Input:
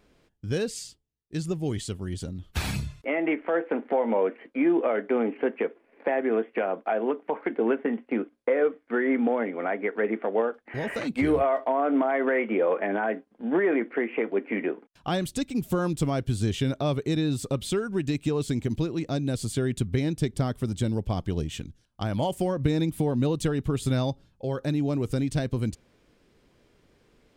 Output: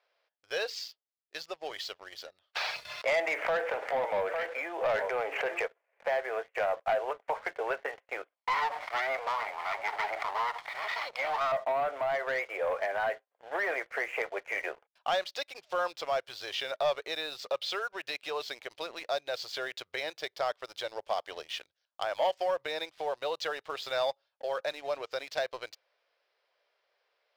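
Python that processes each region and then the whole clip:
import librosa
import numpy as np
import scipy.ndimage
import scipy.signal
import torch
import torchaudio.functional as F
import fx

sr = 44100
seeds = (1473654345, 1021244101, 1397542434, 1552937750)

y = fx.chain(x, sr, fx.echo_single(ms=853, db=-18.5),
    fx.env_flatten(amount_pct=70), at=(2.85, 5.66))
y = fx.chain(y, sr, fx.lower_of_two(delay_ms=0.93),
    fx.sustainer(db_per_s=41.0), at=(8.35, 11.52))
y = scipy.signal.sosfilt(scipy.signal.ellip(3, 1.0, 40, [580.0, 5100.0], 'bandpass', fs=sr, output='sos'), y)
y = fx.leveller(y, sr, passes=2)
y = fx.rider(y, sr, range_db=3, speed_s=2.0)
y = F.gain(torch.from_numpy(y), -6.5).numpy()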